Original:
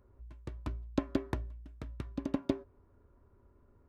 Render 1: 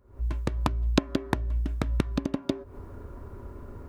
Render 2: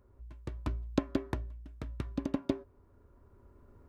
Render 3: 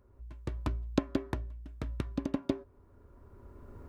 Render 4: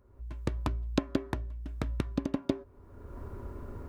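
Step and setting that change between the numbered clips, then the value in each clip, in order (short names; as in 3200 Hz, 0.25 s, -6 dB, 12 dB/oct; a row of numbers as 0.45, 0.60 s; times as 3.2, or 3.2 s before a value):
recorder AGC, rising by: 88, 5, 12, 32 dB/s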